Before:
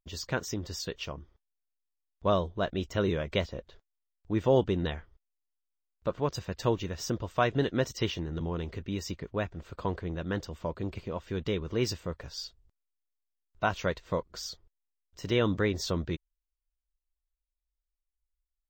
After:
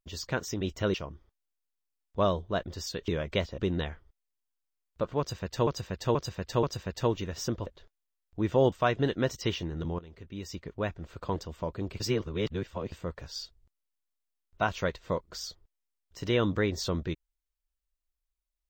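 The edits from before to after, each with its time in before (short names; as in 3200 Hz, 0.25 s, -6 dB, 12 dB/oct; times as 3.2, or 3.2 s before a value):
0.61–1.01 swap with 2.75–3.08
3.58–4.64 move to 7.28
6.25–6.73 loop, 4 plays
8.55–9.42 fade in, from -18 dB
9.92–10.38 cut
11.02–11.94 reverse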